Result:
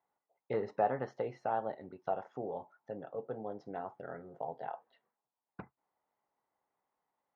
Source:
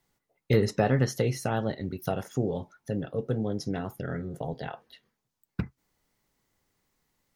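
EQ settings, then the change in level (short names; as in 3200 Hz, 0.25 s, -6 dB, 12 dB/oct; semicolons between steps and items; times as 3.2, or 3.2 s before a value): band-pass 820 Hz, Q 2.2; air absorption 140 m; +1.0 dB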